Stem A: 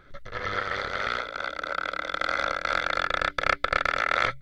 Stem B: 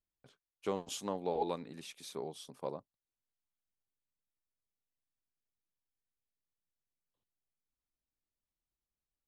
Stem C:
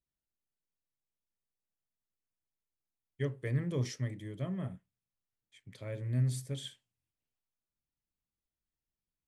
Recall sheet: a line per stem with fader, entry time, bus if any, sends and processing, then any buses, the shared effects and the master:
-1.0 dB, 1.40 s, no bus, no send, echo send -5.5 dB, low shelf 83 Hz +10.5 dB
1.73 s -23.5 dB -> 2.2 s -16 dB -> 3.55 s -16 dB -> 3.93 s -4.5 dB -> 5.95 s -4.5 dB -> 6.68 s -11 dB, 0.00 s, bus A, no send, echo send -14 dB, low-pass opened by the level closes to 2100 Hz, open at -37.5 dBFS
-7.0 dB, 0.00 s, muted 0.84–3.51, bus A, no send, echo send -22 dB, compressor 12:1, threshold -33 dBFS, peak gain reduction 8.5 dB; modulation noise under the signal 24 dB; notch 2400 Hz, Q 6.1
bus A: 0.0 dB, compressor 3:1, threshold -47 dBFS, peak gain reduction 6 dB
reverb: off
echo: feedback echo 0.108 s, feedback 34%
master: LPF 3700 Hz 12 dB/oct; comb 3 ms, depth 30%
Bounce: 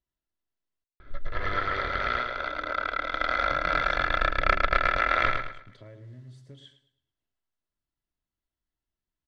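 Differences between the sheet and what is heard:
stem A: entry 1.40 s -> 1.00 s; stem B: muted; stem C -7.0 dB -> +3.5 dB

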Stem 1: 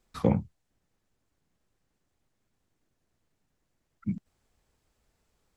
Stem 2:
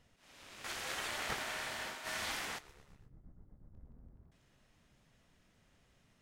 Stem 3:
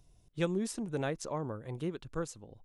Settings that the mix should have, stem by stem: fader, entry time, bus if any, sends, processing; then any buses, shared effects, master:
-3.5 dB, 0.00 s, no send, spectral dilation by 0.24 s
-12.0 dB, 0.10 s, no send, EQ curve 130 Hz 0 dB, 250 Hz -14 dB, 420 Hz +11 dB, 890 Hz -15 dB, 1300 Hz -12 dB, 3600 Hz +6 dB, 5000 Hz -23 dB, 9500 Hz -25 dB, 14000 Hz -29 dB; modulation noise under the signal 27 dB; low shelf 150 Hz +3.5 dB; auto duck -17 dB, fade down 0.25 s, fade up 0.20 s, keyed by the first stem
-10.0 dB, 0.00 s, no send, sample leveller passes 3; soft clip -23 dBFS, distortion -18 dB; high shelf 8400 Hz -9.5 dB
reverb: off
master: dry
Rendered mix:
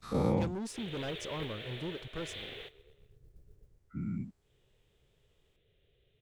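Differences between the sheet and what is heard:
stem 1 -3.5 dB -> -10.5 dB; stem 2 -12.0 dB -> -3.0 dB

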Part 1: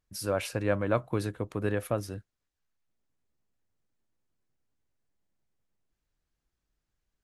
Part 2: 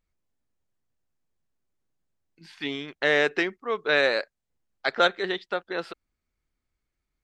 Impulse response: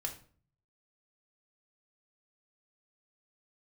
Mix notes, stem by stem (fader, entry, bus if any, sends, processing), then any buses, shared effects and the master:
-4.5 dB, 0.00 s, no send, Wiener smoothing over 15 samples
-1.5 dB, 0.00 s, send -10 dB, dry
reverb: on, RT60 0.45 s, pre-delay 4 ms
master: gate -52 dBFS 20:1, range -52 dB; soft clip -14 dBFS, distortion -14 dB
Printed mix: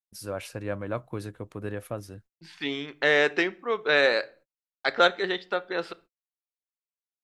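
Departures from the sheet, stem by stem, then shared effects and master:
stem 1: missing Wiener smoothing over 15 samples; master: missing soft clip -14 dBFS, distortion -14 dB

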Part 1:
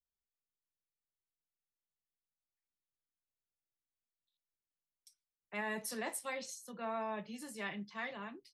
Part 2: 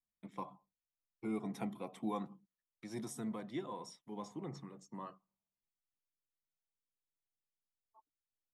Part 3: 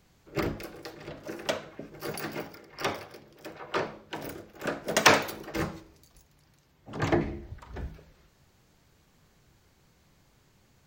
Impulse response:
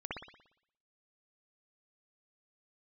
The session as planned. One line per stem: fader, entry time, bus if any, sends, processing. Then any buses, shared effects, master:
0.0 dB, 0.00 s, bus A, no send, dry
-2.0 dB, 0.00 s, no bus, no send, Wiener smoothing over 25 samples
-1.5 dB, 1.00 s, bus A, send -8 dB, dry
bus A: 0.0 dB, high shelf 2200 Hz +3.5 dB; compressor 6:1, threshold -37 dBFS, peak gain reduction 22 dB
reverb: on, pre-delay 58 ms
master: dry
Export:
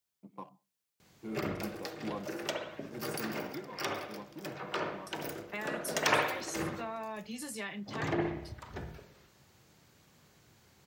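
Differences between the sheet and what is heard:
stem 1 0.0 dB -> +6.5 dB; master: extra HPF 89 Hz 12 dB/oct

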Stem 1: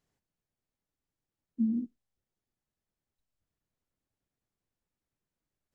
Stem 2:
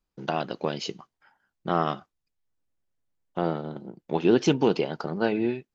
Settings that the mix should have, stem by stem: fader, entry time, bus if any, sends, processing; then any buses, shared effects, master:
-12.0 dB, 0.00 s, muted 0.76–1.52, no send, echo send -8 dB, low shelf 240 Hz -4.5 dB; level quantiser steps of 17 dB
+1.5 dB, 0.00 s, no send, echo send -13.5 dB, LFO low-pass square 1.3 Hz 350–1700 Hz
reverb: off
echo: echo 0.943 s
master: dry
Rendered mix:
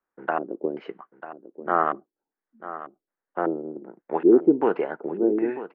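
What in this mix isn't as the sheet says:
stem 1: missing level quantiser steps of 17 dB; master: extra three-band isolator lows -23 dB, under 270 Hz, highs -19 dB, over 2300 Hz

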